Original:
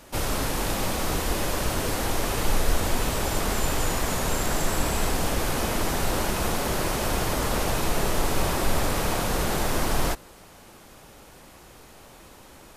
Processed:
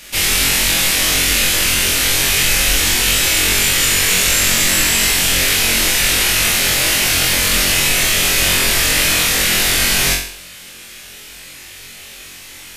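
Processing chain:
high shelf with overshoot 1,500 Hz +13.5 dB, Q 1.5
on a send: flutter between parallel walls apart 3.8 metres, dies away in 0.54 s

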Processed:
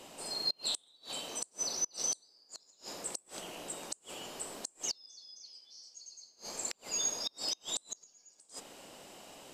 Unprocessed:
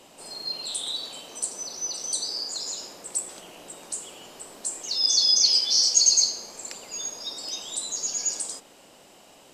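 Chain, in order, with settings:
gate with flip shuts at −22 dBFS, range −33 dB

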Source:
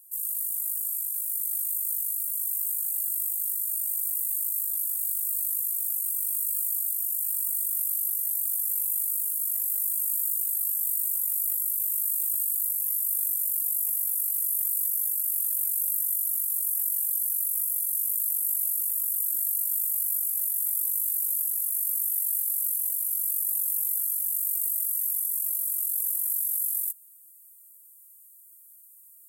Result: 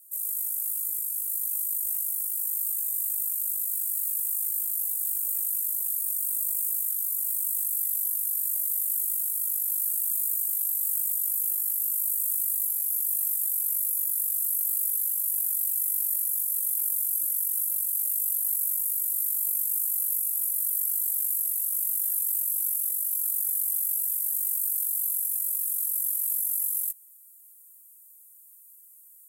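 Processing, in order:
in parallel at −11.5 dB: floating-point word with a short mantissa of 2 bits
on the sum: frequency shifter −120 Hz
level −2 dB

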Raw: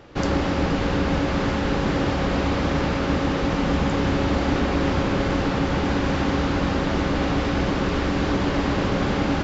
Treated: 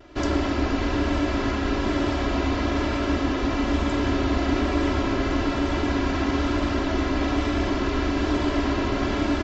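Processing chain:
pitch vibrato 1.1 Hz 39 cents
comb filter 3 ms, depth 90%
level −4 dB

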